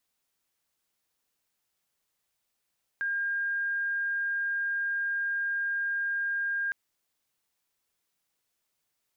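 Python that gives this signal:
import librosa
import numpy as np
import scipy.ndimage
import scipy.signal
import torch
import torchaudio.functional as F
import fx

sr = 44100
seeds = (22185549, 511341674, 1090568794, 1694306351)

y = 10.0 ** (-27.0 / 20.0) * np.sin(2.0 * np.pi * (1610.0 * (np.arange(round(3.71 * sr)) / sr)))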